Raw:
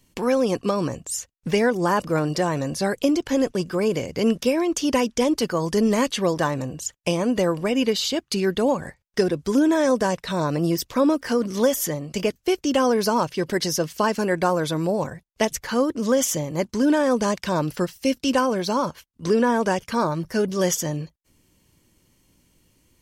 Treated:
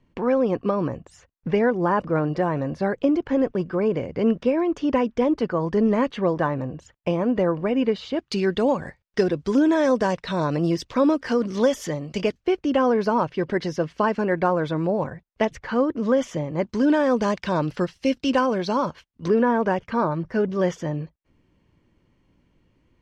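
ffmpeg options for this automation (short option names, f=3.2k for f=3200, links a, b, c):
-af "asetnsamples=n=441:p=0,asendcmd='8.19 lowpass f 4300;12.43 lowpass f 2300;16.67 lowpass f 3800;19.28 lowpass f 2100',lowpass=1.8k"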